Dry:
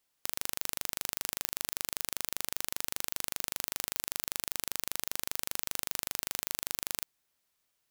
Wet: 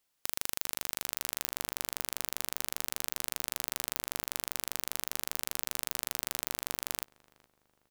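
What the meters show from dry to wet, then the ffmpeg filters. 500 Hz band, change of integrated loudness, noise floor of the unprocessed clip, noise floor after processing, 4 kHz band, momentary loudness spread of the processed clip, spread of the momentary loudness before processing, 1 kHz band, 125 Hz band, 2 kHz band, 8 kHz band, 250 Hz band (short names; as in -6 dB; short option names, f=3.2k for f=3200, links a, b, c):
0.0 dB, 0.0 dB, -79 dBFS, -78 dBFS, 0.0 dB, 0 LU, 0 LU, 0.0 dB, 0.0 dB, 0.0 dB, 0.0 dB, 0.0 dB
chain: -filter_complex "[0:a]asplit=2[a][b];[b]adelay=414,lowpass=f=1.3k:p=1,volume=-20dB,asplit=2[c][d];[d]adelay=414,lowpass=f=1.3k:p=1,volume=0.51,asplit=2[e][f];[f]adelay=414,lowpass=f=1.3k:p=1,volume=0.51,asplit=2[g][h];[h]adelay=414,lowpass=f=1.3k:p=1,volume=0.51[i];[a][c][e][g][i]amix=inputs=5:normalize=0"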